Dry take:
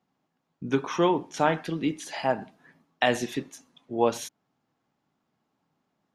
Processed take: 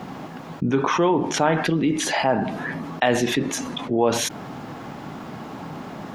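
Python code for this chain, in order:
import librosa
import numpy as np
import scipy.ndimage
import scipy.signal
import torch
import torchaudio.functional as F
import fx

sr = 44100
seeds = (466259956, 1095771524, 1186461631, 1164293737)

y = fx.high_shelf(x, sr, hz=3600.0, db=-10.0)
y = fx.env_flatten(y, sr, amount_pct=70)
y = y * librosa.db_to_amplitude(2.0)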